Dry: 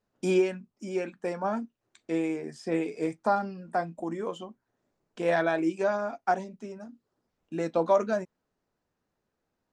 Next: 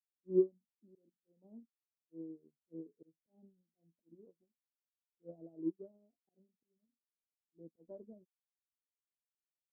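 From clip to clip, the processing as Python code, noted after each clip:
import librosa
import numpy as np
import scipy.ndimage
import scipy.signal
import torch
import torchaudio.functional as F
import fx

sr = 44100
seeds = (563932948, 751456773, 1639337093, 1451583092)

y = scipy.signal.sosfilt(scipy.signal.cheby2(4, 60, 1500.0, 'lowpass', fs=sr, output='sos'), x)
y = fx.auto_swell(y, sr, attack_ms=122.0)
y = fx.upward_expand(y, sr, threshold_db=-46.0, expansion=2.5)
y = y * librosa.db_to_amplitude(-2.5)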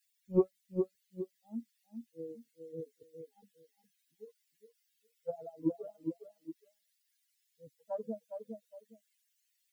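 y = fx.bin_expand(x, sr, power=3.0)
y = fx.echo_feedback(y, sr, ms=411, feedback_pct=16, wet_db=-10.5)
y = fx.spectral_comp(y, sr, ratio=2.0)
y = y * librosa.db_to_amplitude(5.0)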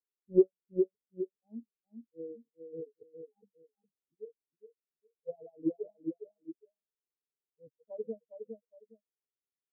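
y = fx.lowpass_res(x, sr, hz=420.0, q=4.9)
y = y * librosa.db_to_amplitude(-6.5)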